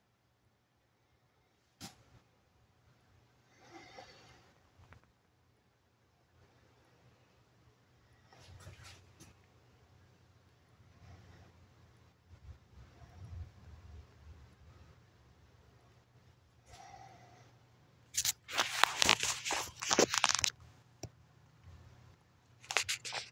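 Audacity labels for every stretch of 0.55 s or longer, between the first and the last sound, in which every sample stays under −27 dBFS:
20.480000	22.710000	silence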